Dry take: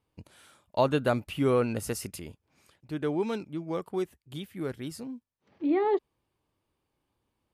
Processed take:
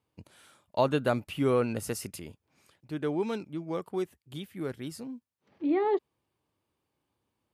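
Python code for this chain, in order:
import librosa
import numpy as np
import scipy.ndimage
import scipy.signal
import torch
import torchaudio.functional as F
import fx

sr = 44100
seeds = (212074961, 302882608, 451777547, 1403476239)

y = scipy.signal.sosfilt(scipy.signal.butter(2, 77.0, 'highpass', fs=sr, output='sos'), x)
y = y * librosa.db_to_amplitude(-1.0)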